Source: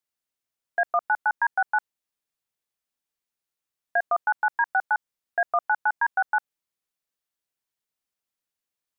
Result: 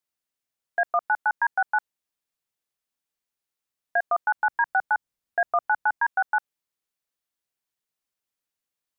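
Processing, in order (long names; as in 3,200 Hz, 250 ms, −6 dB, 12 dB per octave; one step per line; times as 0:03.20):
0:04.37–0:05.96: low-shelf EQ 230 Hz +8.5 dB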